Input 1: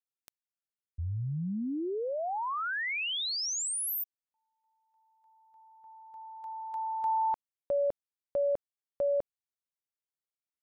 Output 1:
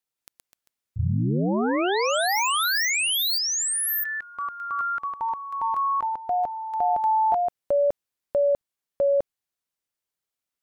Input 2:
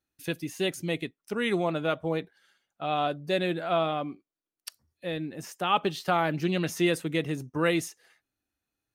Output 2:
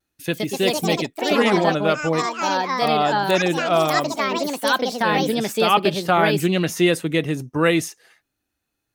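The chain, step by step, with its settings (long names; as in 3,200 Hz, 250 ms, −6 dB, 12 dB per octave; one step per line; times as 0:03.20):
tape wow and flutter 0.49 Hz 21 cents
delay with pitch and tempo change per echo 178 ms, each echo +4 semitones, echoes 3
level +7.5 dB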